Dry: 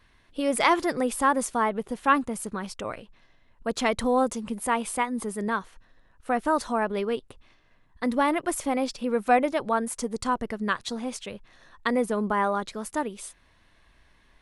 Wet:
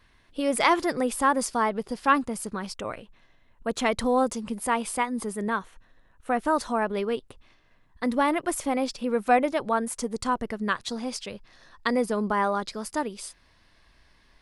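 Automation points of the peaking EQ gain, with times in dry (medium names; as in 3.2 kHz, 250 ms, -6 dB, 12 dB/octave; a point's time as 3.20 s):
peaking EQ 4.9 kHz 0.29 oct
+2 dB
from 1.41 s +13 dB
from 2.11 s +6.5 dB
from 2.74 s -4.5 dB
from 3.92 s +5 dB
from 5.33 s -6 dB
from 6.40 s +1.5 dB
from 10.91 s +11.5 dB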